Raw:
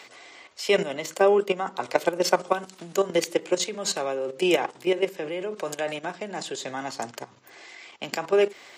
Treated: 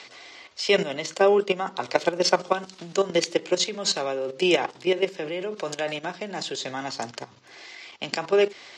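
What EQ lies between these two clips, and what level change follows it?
high-frequency loss of the air 92 metres
low-shelf EQ 110 Hz +7.5 dB
parametric band 5,100 Hz +9.5 dB 1.6 octaves
0.0 dB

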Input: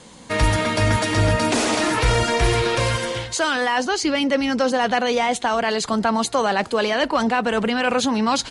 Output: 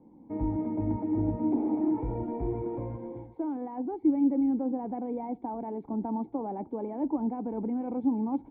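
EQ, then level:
formant resonators in series u
0.0 dB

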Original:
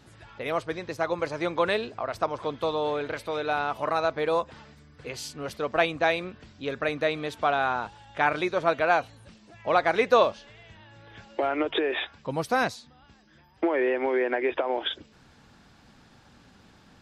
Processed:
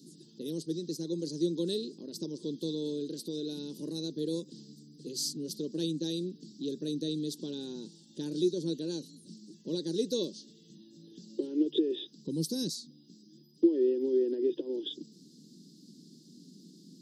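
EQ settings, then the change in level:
elliptic high-pass filter 160 Hz, stop band 40 dB
elliptic band-stop filter 340–4,500 Hz, stop band 40 dB
dynamic equaliser 230 Hz, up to −6 dB, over −48 dBFS, Q 1.5
+6.5 dB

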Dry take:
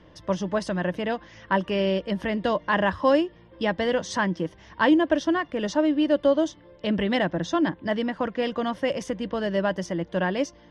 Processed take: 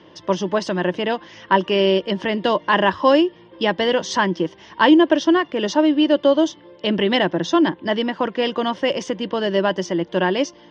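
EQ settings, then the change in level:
loudspeaker in its box 140–6,300 Hz, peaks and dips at 370 Hz +8 dB, 940 Hz +5 dB, 3,000 Hz +5 dB
high-shelf EQ 4,000 Hz +7 dB
+3.5 dB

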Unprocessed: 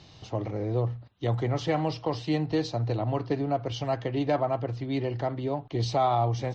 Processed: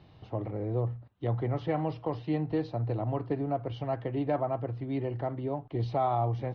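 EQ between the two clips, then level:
low-pass filter 2,300 Hz 6 dB per octave
high-frequency loss of the air 220 metres
−2.5 dB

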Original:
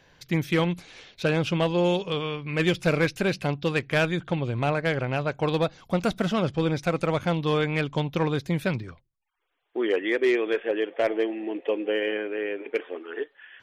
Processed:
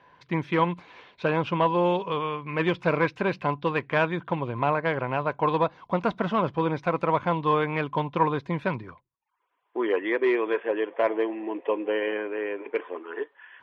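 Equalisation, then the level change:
high-pass filter 190 Hz 6 dB per octave
low-pass filter 2,400 Hz 12 dB per octave
parametric band 1,000 Hz +14.5 dB 0.26 octaves
0.0 dB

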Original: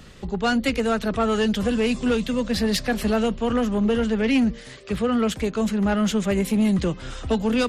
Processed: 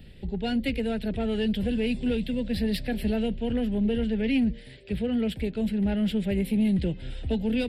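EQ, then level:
low-shelf EQ 160 Hz +6.5 dB
phaser with its sweep stopped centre 2,800 Hz, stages 4
−5.5 dB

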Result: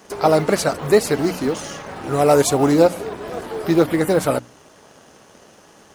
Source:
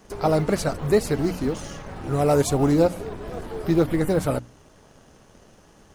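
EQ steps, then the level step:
high-pass filter 350 Hz 6 dB per octave
+7.5 dB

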